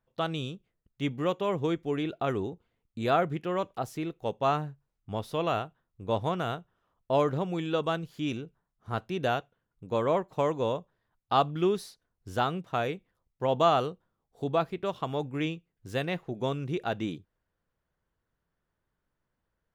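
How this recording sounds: noise floor -83 dBFS; spectral tilt -5.0 dB/octave

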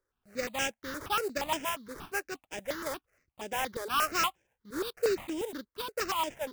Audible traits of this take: aliases and images of a low sample rate 4.2 kHz, jitter 20%; notches that jump at a steady rate 8.5 Hz 740–4200 Hz

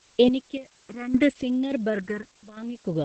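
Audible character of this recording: random-step tremolo, depth 90%; phasing stages 4, 0.79 Hz, lowest notch 610–1500 Hz; a quantiser's noise floor 10-bit, dither triangular; Opus

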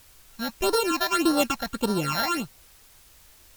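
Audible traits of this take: a buzz of ramps at a fixed pitch in blocks of 32 samples; phasing stages 8, 1.7 Hz, lowest notch 340–2500 Hz; a quantiser's noise floor 10-bit, dither triangular; AAC

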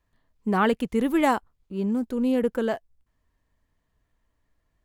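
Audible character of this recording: noise floor -75 dBFS; spectral tilt -5.0 dB/octave

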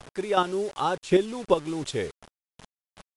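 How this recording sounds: chopped level 2.7 Hz, depth 60%, duty 15%; a quantiser's noise floor 8-bit, dither none; MP3

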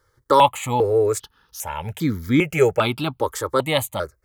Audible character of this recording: notches that jump at a steady rate 2.5 Hz 700–2700 Hz

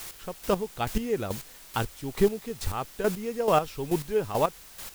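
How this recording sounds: a quantiser's noise floor 8-bit, dither triangular; chopped level 2.3 Hz, depth 65%, duty 25%

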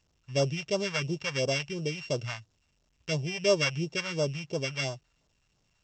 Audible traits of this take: a buzz of ramps at a fixed pitch in blocks of 16 samples; phasing stages 2, 2.9 Hz, lowest notch 320–2000 Hz; A-law

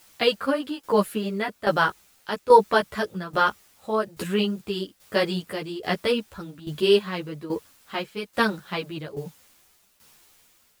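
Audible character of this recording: a quantiser's noise floor 10-bit, dither triangular; tremolo saw down 1.2 Hz, depth 75%; a shimmering, thickened sound

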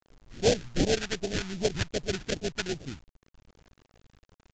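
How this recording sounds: aliases and images of a low sample rate 1.1 kHz, jitter 20%; phasing stages 2, 2.6 Hz, lowest notch 520–1300 Hz; a quantiser's noise floor 10-bit, dither none; µ-law

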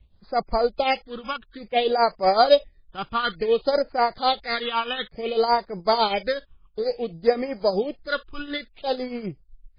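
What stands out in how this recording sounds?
a buzz of ramps at a fixed pitch in blocks of 8 samples; phasing stages 8, 0.57 Hz, lowest notch 580–3300 Hz; tremolo triangle 8 Hz, depth 75%; MP3

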